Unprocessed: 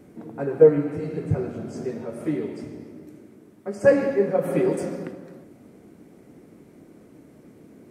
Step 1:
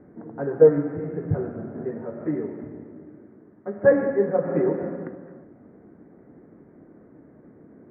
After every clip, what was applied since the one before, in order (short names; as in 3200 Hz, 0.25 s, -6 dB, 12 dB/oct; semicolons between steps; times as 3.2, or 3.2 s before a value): elliptic low-pass 1800 Hz, stop band 70 dB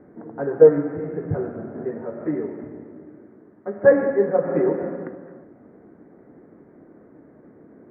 tone controls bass -5 dB, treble -7 dB; gain +3 dB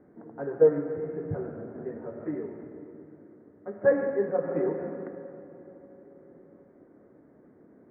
reverb RT60 4.6 s, pre-delay 95 ms, DRR 13 dB; gain -8 dB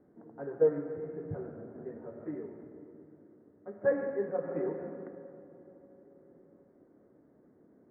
mismatched tape noise reduction decoder only; gain -6 dB